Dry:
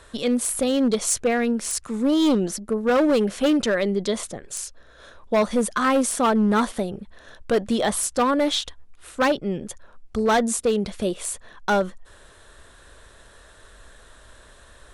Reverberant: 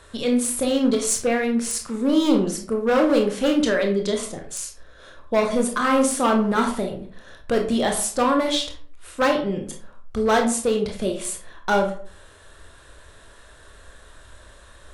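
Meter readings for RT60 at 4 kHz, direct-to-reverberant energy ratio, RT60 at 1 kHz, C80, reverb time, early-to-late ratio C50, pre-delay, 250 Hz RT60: 0.30 s, 2.0 dB, 0.45 s, 13.0 dB, 0.45 s, 7.5 dB, 21 ms, 0.55 s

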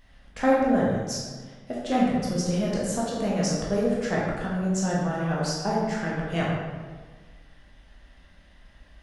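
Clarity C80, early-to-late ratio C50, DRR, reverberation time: 1.5 dB, -0.5 dB, -5.5 dB, 1.5 s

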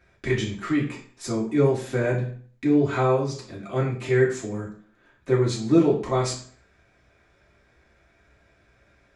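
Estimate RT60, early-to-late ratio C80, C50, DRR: 0.45 s, 12.0 dB, 8.0 dB, -5.5 dB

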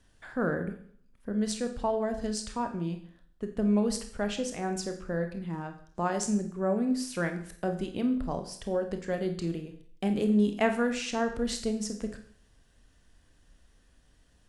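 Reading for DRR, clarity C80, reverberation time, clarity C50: 6.0 dB, 13.5 dB, 0.55 s, 9.5 dB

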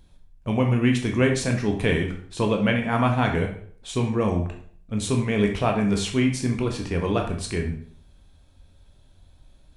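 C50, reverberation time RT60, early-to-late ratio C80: 7.5 dB, 0.55 s, 11.0 dB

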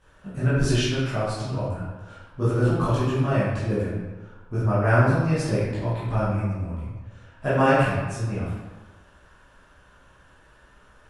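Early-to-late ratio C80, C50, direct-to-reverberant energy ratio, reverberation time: 1.0 dB, -1.5 dB, -11.5 dB, 1.3 s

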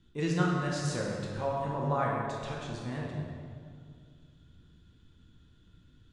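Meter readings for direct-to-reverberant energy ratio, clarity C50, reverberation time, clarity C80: -3.0 dB, 0.0 dB, 2.1 s, 1.5 dB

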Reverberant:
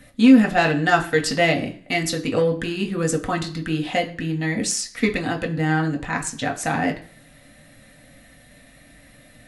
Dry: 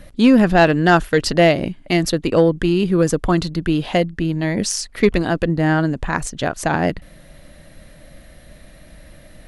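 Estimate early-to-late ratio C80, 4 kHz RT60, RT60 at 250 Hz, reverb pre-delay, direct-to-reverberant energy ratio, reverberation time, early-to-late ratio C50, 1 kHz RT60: 17.0 dB, 0.45 s, 0.40 s, 3 ms, 1.0 dB, 0.45 s, 14.0 dB, 0.50 s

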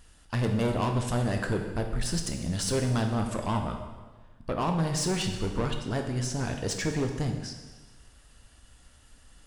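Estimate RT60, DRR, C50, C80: 1.3 s, 3.5 dB, 6.0 dB, 8.0 dB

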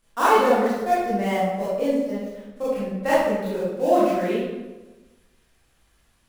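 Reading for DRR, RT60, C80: -11.0 dB, 1.2 s, 1.5 dB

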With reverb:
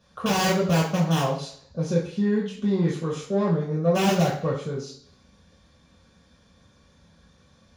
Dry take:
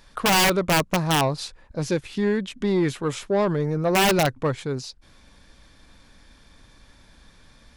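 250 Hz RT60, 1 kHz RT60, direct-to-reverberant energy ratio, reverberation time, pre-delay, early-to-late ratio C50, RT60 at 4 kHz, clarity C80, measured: 0.60 s, 0.55 s, -5.5 dB, 0.55 s, 3 ms, 6.0 dB, 0.65 s, 10.0 dB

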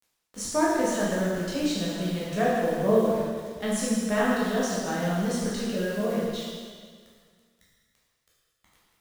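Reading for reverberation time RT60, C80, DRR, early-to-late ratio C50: 1.8 s, 0.5 dB, -7.5 dB, -1.5 dB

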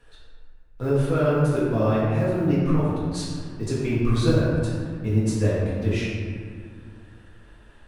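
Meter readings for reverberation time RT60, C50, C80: 2.0 s, -2.0 dB, 0.5 dB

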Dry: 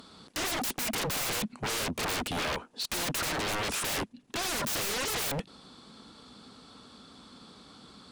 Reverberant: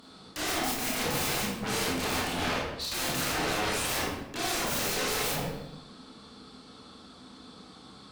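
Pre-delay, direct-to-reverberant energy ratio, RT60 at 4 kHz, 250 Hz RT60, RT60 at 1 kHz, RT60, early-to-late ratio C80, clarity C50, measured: 23 ms, -5.5 dB, 0.65 s, 1.1 s, 0.90 s, 0.95 s, 3.5 dB, -0.5 dB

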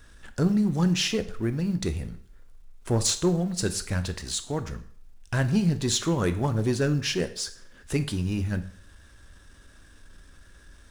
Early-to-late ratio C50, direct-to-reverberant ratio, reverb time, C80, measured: 14.5 dB, 10.0 dB, 0.55 s, 17.5 dB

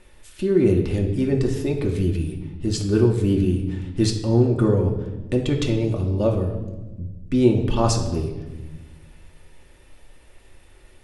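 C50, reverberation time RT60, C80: 7.0 dB, 1.2 s, 9.5 dB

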